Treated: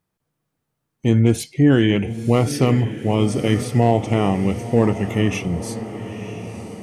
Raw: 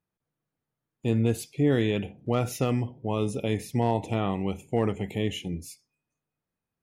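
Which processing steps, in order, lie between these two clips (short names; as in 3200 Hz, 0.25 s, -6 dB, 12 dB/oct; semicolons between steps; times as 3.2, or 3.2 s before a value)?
diffused feedback echo 0.987 s, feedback 55%, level -12 dB; formant shift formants -2 st; gain +9 dB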